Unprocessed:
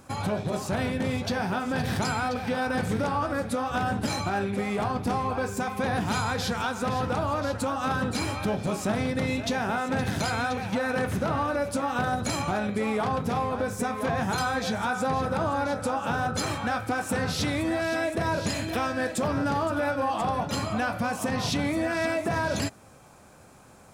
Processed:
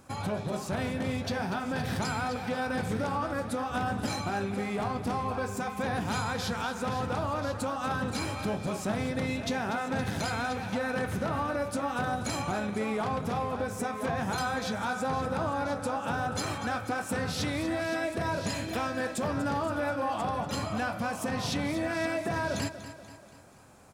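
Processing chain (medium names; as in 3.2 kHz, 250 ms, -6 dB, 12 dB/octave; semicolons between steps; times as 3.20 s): feedback delay 241 ms, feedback 51%, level -13 dB; trim -4 dB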